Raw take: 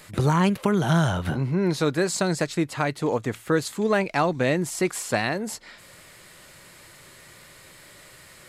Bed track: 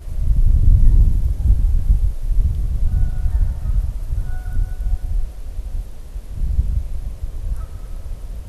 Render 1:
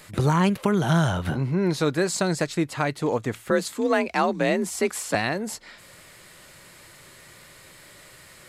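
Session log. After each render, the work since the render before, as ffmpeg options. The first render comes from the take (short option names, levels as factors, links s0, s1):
-filter_complex "[0:a]asettb=1/sr,asplit=3[s0][s1][s2];[s0]atrim=end=3.504[s3];[s1]atrim=start=3.5:end=5.15,asetpts=PTS-STARTPTS,afade=t=in:d=0.004:c=qsin,afade=t=out:st=1.646:d=0.004:c=qsin,afreqshift=44[s4];[s2]atrim=start=5.146[s5];[s3][s4]acrossfade=d=0.004:c1=hsin:c2=qsin[s6];[s6][s5]acrossfade=d=0.004:c1=qsin:c2=hsin"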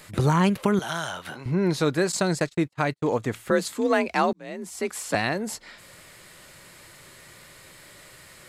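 -filter_complex "[0:a]asettb=1/sr,asplit=3[s0][s1][s2];[s0]atrim=end=0.794[s3];[s1]atrim=start=0.79:end=1.46,asetpts=PTS-STARTPTS,afade=t=in:d=0.004:c=qsin,afade=t=out:st=0.666:d=0.004:c=qsin,highpass=f=1300:p=1[s4];[s2]atrim=start=1.456[s5];[s3][s4]acrossfade=d=0.004:c1=hsin:c2=qsin[s6];[s6][s5]acrossfade=d=0.004:c1=qsin:c2=hsin,asettb=1/sr,asplit=3[s7][s8][s9];[s7]atrim=end=2.124[s10];[s8]atrim=start=2.12:end=3.12,asetpts=PTS-STARTPTS,afade=t=in:d=0.004:c=qsin,afade=t=out:st=0.996:d=0.004:c=qsin,agate=range=0.00562:threshold=0.0224:ratio=16:release=100:detection=peak[s11];[s9]atrim=start=3.116[s12];[s10][s11]acrossfade=d=0.004:c1=hsin:c2=qsin[s13];[s13][s12]acrossfade=d=0.004:c1=qsin:c2=hsin,asplit=2[s14][s15];[s14]atrim=end=4.33,asetpts=PTS-STARTPTS,afade=t=out:st=4.326:d=0.004:c=hsin[s16];[s15]atrim=start=4.33,asetpts=PTS-STARTPTS,afade=t=in:d=0.89[s17];[s16][s17]concat=n=2:v=0:a=1"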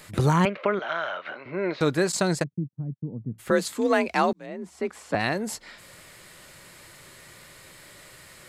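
-filter_complex "[0:a]asettb=1/sr,asplit=3[s0][s1][s2];[s0]atrim=end=0.454[s3];[s1]atrim=start=0.45:end=1.81,asetpts=PTS-STARTPTS,afade=t=in:d=0.004:c=qsin,afade=t=out:st=1.356:d=0.004:c=qsin,highpass=380,equalizer=f=590:t=q:w=4:g=8,equalizer=f=870:t=q:w=4:g=-5,equalizer=f=1300:t=q:w=4:g=4,equalizer=f=2200:t=q:w=4:g=6,equalizer=f=3300:t=q:w=4:g=-4,lowpass=f=3400:w=0.5412,lowpass=f=3400:w=1.3066[s4];[s2]atrim=start=1.806[s5];[s3][s4]acrossfade=d=0.004:c1=hsin:c2=qsin[s6];[s6][s5]acrossfade=d=0.004:c1=qsin:c2=hsin,asplit=3[s7][s8][s9];[s7]afade=t=out:st=2.42:d=0.02[s10];[s8]asuperpass=centerf=160:order=4:qfactor=1.3,afade=t=in:st=2.42:d=0.02,afade=t=out:st=3.38:d=0.02[s11];[s9]afade=t=in:st=3.38:d=0.02[s12];[s10][s11][s12]amix=inputs=3:normalize=0,asplit=3[s13][s14][s15];[s13]afade=t=out:st=4.45:d=0.02[s16];[s14]lowpass=f=1500:p=1,afade=t=in:st=4.45:d=0.02,afade=t=out:st=5.19:d=0.02[s17];[s15]afade=t=in:st=5.19:d=0.02[s18];[s16][s17][s18]amix=inputs=3:normalize=0"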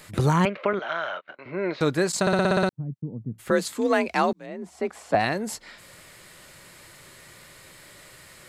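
-filter_complex "[0:a]asettb=1/sr,asplit=3[s0][s1][s2];[s0]atrim=end=0.734[s3];[s1]atrim=start=0.73:end=1.39,asetpts=PTS-STARTPTS,afade=t=in:d=0.004:c=qsin,afade=t=out:st=0.656:d=0.004:c=qsin,agate=range=0.0316:threshold=0.0178:ratio=16:release=100:detection=peak[s4];[s2]atrim=start=1.386[s5];[s3][s4]acrossfade=d=0.004:c1=hsin:c2=qsin[s6];[s6][s5]acrossfade=d=0.004:c1=qsin:c2=hsin,asettb=1/sr,asplit=3[s7][s8][s9];[s7]atrim=end=4.624[s10];[s8]atrim=start=4.62:end=5.25,asetpts=PTS-STARTPTS,afade=t=in:d=0.004:c=qsin,afade=t=out:st=0.626:d=0.004:c=qsin,equalizer=f=700:t=o:w=0.56:g=8[s11];[s9]atrim=start=5.246[s12];[s10][s11]acrossfade=d=0.004:c1=hsin:c2=qsin[s13];[s13][s12]acrossfade=d=0.004:c1=qsin:c2=hsin,asplit=9[s14][s15][s16][s17][s18][s19][s20][s21][s22];[s14]atrim=end=2.272[s23];[s15]atrim=start=2.208:end=2.272[s24];[s16]atrim=start=2.208:end=2.272[s25];[s17]atrim=start=2.208:end=2.272[s26];[s18]atrim=start=2.208:end=2.272[s27];[s19]atrim=start=2.208:end=2.272[s28];[s20]atrim=start=2.208:end=2.272[s29];[s21]atrim=start=2.208:end=2.272[s30];[s22]atrim=start=2.688[s31];[s23][s24]acrossfade=d=0.004:c1=hsin:c2=hsin[s32];[s32][s25]acrossfade=d=0.004:c1=hsin:c2=hsin[s33];[s33][s26]acrossfade=d=0.004:c1=hsin:c2=hsin[s34];[s34][s27]acrossfade=d=0.004:c1=hsin:c2=hsin[s35];[s35][s28]acrossfade=d=0.004:c1=hsin:c2=hsin[s36];[s36][s29]acrossfade=d=0.004:c1=hsin:c2=hsin[s37];[s37][s30]acrossfade=d=0.004:c1=hsin:c2=hsin[s38];[s38][s31]acrossfade=d=0.004:c1=hsin:c2=hsin"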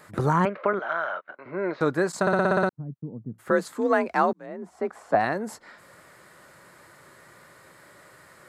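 -af "highpass=f=180:p=1,highshelf=f=2000:t=q:w=1.5:g=-8.5"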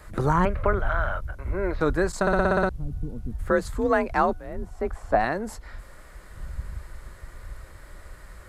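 -filter_complex "[1:a]volume=0.168[s0];[0:a][s0]amix=inputs=2:normalize=0"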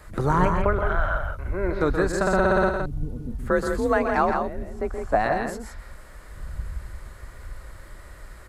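-af "aecho=1:1:125.4|166.2:0.398|0.501"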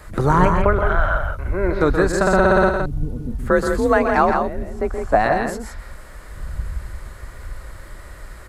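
-af "volume=1.88"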